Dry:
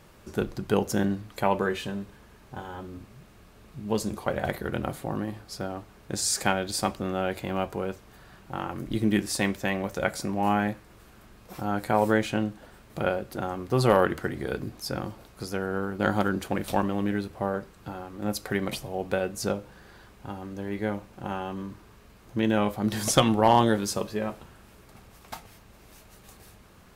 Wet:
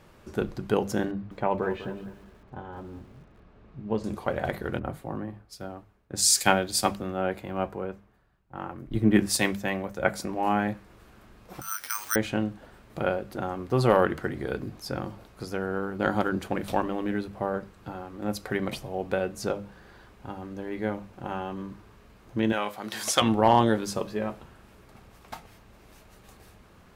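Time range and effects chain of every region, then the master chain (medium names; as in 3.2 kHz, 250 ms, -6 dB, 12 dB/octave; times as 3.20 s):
1.11–4.04 s: tape spacing loss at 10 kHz 25 dB + bit-crushed delay 199 ms, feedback 35%, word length 8-bit, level -12.5 dB
4.79–10.25 s: treble shelf 9.5 kHz +6.5 dB + three bands expanded up and down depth 100%
11.61–12.16 s: elliptic high-pass 1.2 kHz, stop band 50 dB + careless resampling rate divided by 6×, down none, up zero stuff
22.52–23.22 s: high-pass 570 Hz 6 dB/octave + tilt shelf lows -4 dB, about 830 Hz
whole clip: treble shelf 4.5 kHz -7 dB; hum notches 50/100/150/200 Hz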